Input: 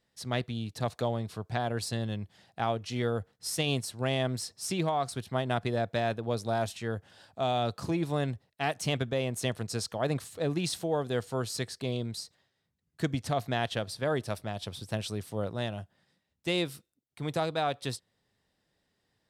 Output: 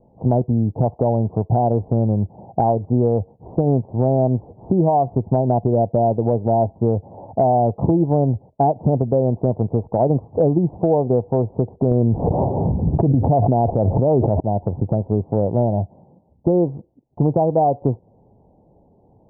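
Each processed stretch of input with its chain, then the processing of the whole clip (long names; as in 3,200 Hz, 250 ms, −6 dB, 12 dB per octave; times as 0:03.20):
0:11.91–0:14.40: high-frequency loss of the air 350 metres + envelope flattener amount 100%
whole clip: Butterworth low-pass 910 Hz 72 dB per octave; downward compressor, threshold −39 dBFS; boost into a limiter +31 dB; level −6 dB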